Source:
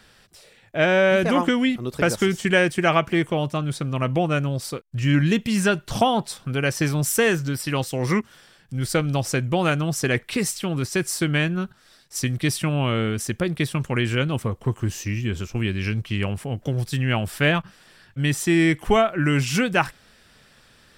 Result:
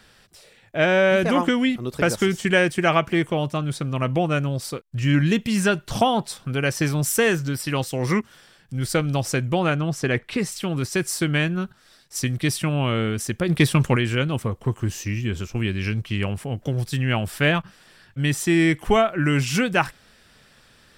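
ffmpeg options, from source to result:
-filter_complex "[0:a]asettb=1/sr,asplit=3[a][b][c];[a]atrim=end=9.594[d];[b]atrim=start=9.59:end=10.52,asetpts=PTS-STARTPTS,afade=t=in:d=0.004:c=qsin,afade=t=out:st=0.926:d=0.004:c=qsin,lowpass=f=3.3k:p=1[e];[c]atrim=start=10.516[f];[d][e]acrossfade=d=0.004:c1=hsin:c2=qsin[g];[g][f]acrossfade=d=0.004:c1=qsin:c2=hsin,asplit=3[h][i][j];[h]afade=t=out:st=13.48:d=0.02[k];[i]acontrast=80,afade=t=in:st=13.48:d=0.02,afade=t=out:st=13.95:d=0.02[l];[j]afade=t=in:st=13.95:d=0.02[m];[k][l][m]amix=inputs=3:normalize=0"

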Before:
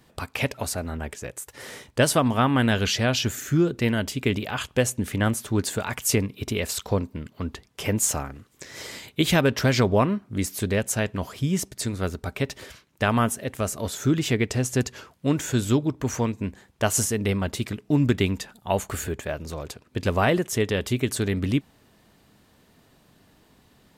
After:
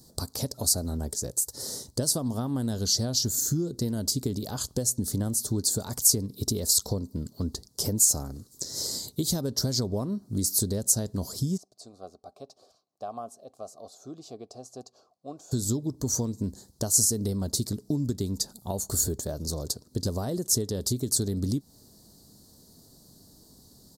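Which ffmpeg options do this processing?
-filter_complex "[0:a]asplit=3[a][b][c];[a]afade=t=out:st=11.56:d=0.02[d];[b]asplit=3[e][f][g];[e]bandpass=f=730:t=q:w=8,volume=0dB[h];[f]bandpass=f=1.09k:t=q:w=8,volume=-6dB[i];[g]bandpass=f=2.44k:t=q:w=8,volume=-9dB[j];[h][i][j]amix=inputs=3:normalize=0,afade=t=in:st=11.56:d=0.02,afade=t=out:st=15.51:d=0.02[k];[c]afade=t=in:st=15.51:d=0.02[l];[d][k][l]amix=inputs=3:normalize=0,acompressor=threshold=-27dB:ratio=6,firequalizer=gain_entry='entry(240,0);entry(2500,-29);entry(4300,8)':delay=0.05:min_phase=1,volume=2.5dB"

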